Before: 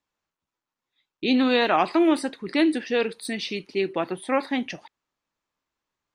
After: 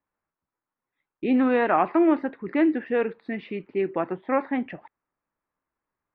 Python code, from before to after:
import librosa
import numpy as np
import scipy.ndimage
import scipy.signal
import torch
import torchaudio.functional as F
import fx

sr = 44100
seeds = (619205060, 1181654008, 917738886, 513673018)

y = scipy.signal.sosfilt(scipy.signal.butter(4, 2000.0, 'lowpass', fs=sr, output='sos'), x)